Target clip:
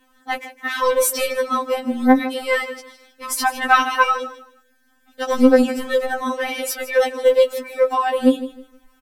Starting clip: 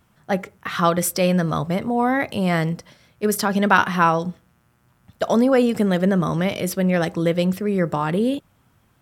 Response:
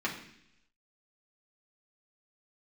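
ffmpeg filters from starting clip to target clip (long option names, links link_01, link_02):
-filter_complex "[0:a]aecho=1:1:157|314|471:0.178|0.0445|0.0111,asubboost=boost=10.5:cutoff=53,acrossover=split=900[link_01][link_02];[link_01]asoftclip=type=hard:threshold=-18dB[link_03];[link_03][link_02]amix=inputs=2:normalize=0,afftfilt=real='re*3.46*eq(mod(b,12),0)':imag='im*3.46*eq(mod(b,12),0)':win_size=2048:overlap=0.75,volume=5.5dB"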